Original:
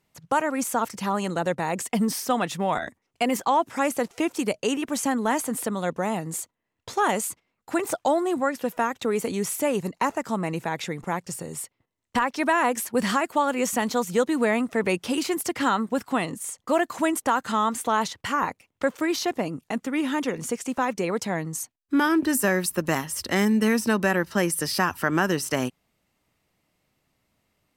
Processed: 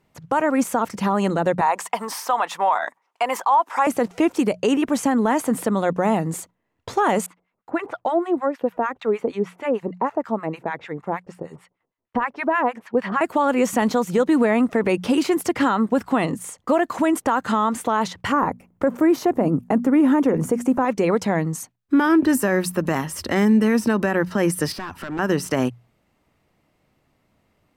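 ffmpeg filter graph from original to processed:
-filter_complex "[0:a]asettb=1/sr,asplit=3[a][b][c];[a]atrim=end=1.614[d];[b]atrim=start=1.61:end=3.87,asetpts=PTS-STARTPTS,afade=t=in:d=0.004:c=qsin,afade=t=out:st=2.256:d=0.004:c=qsin,highpass=740,equalizer=f=960:t=o:w=0.77:g=10[e];[c]atrim=start=3.866[f];[d][e]acrossfade=d=0.004:c1=hsin:c2=qsin[g];[g][f]acrossfade=d=0.004:c1=qsin:c2=hsin,asettb=1/sr,asplit=3[h][i][j];[h]atrim=end=7.264[k];[i]atrim=start=7.26:end=13.21,asetpts=PTS-STARTPTS,afade=t=in:d=0.004:c=qsin,afade=t=out:st=5.946:d=0.004:c=qsin,acrossover=split=4700[l][m];[m]acompressor=threshold=-44dB:ratio=4:attack=1:release=60[n];[l][n]amix=inputs=2:normalize=0,bass=f=250:g=-7,treble=f=4k:g=-11,acrossover=split=940[o][p];[o]aeval=exprs='val(0)*(1-1/2+1/2*cos(2*PI*6.5*n/s))':c=same[q];[p]aeval=exprs='val(0)*(1-1/2-1/2*cos(2*PI*6.5*n/s))':c=same[r];[q][r]amix=inputs=2:normalize=0[s];[j]atrim=start=13.206[t];[k][s]acrossfade=d=0.004:c1=hsin:c2=qsin[u];[u][t]acrossfade=d=0.004:c1=qsin:c2=hsin,asettb=1/sr,asplit=3[v][w][x];[v]atrim=end=18.324[y];[w]atrim=start=18.32:end=20.85,asetpts=PTS-STARTPTS,afade=t=in:d=0.004:c=qsin,afade=t=out:st=2.526:d=0.004:c=qsin,equalizer=f=3.8k:w=0.55:g=-14.5,acontrast=37,bandreject=f=60:t=h:w=6,bandreject=f=120:t=h:w=6,bandreject=f=180:t=h:w=6,bandreject=f=240:t=h:w=6[z];[x]atrim=start=20.846[aa];[y][z]acrossfade=d=0.004:c1=hsin:c2=qsin[ab];[ab][aa]acrossfade=d=0.004:c1=qsin:c2=hsin,asettb=1/sr,asplit=3[ac][ad][ae];[ac]atrim=end=24.724[af];[ad]atrim=start=24.72:end=25.19,asetpts=PTS-STARTPTS,afade=t=in:d=0.004:c=qsin,afade=t=out:st=0.466:d=0.004:c=qsin,highshelf=f=9.4k:g=-10.5,acompressor=threshold=-36dB:ratio=2:attack=3.2:release=140:knee=1:detection=peak,asoftclip=type=hard:threshold=-33.5dB[ag];[ae]atrim=start=25.186[ah];[af][ag]acrossfade=d=0.004:c1=hsin:c2=qsin[ai];[ai][ah]acrossfade=d=0.004:c1=qsin:c2=hsin,highshelf=f=2.6k:g=-11,bandreject=f=60:t=h:w=6,bandreject=f=120:t=h:w=6,bandreject=f=180:t=h:w=6,alimiter=limit=-18.5dB:level=0:latency=1:release=75,volume=8.5dB"

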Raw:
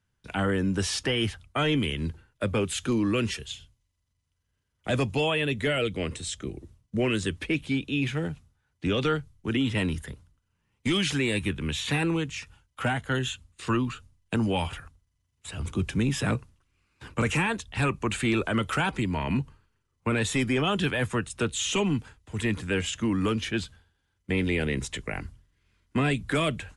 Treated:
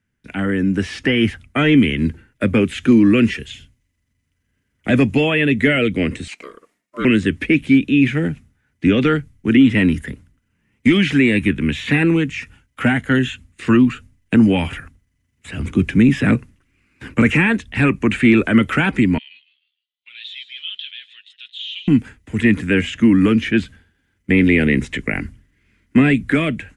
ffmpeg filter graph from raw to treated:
-filter_complex "[0:a]asettb=1/sr,asplit=3[a][b][c];[a]atrim=end=6.284[d];[b]atrim=start=6.28:end=7.05,asetpts=PTS-STARTPTS,afade=t=in:d=0.004:c=qsin,afade=t=out:st=0.766:d=0.004:c=qsin,highpass=440,aeval=exprs='val(0)*sin(2*PI*810*n/s)':c=same[e];[c]atrim=start=7.046[f];[d][e]acrossfade=d=0.004:c1=hsin:c2=qsin[g];[g][f]acrossfade=d=0.004:c1=qsin:c2=hsin,asettb=1/sr,asplit=3[h][i][j];[h]atrim=end=19.184[k];[i]atrim=start=19.18:end=21.88,asetpts=PTS-STARTPTS,afade=t=in:d=0.004:c=qsin,afade=t=out:st=2.696:d=0.004:c=qsin,asuperpass=centerf=3500:order=4:qfactor=3.7,aecho=1:1:5.5:0.46,atrim=end_sample=119070,asplit=4[l][m][n][o];[m]adelay=154,afreqshift=110,volume=-15.5dB[p];[n]adelay=308,afreqshift=220,volume=-24.4dB[q];[o]adelay=462,afreqshift=330,volume=-33.2dB[r];[l][p][q][r]amix=inputs=4:normalize=0,atrim=end_sample=119070[s];[j]atrim=start=21.876[t];[k][s]acrossfade=d=0.004:c1=hsin:c2=qsin[u];[u][t]acrossfade=d=0.004:c1=qsin:c2=hsin,acrossover=split=4200[v][w];[w]acompressor=threshold=-48dB:ratio=4:attack=1:release=60[x];[v][x]amix=inputs=2:normalize=0,equalizer=f=250:t=o:w=1:g=11,equalizer=f=1k:t=o:w=1:g=-6,equalizer=f=2k:t=o:w=1:g=10,equalizer=f=4k:t=o:w=1:g=-5,dynaudnorm=f=360:g=5:m=7dB"

